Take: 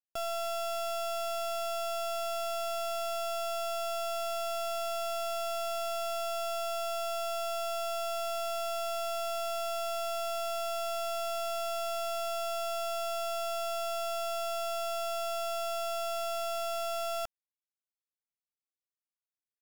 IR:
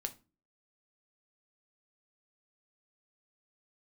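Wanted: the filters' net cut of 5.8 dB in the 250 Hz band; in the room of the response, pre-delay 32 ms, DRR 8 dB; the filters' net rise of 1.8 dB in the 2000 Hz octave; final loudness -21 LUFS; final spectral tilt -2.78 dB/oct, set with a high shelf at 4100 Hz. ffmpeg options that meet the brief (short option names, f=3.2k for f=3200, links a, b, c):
-filter_complex "[0:a]equalizer=f=250:t=o:g=-7.5,equalizer=f=2k:t=o:g=6,highshelf=f=4.1k:g=-6,asplit=2[a][b];[1:a]atrim=start_sample=2205,adelay=32[c];[b][c]afir=irnorm=-1:irlink=0,volume=-7dB[d];[a][d]amix=inputs=2:normalize=0,volume=12.5dB"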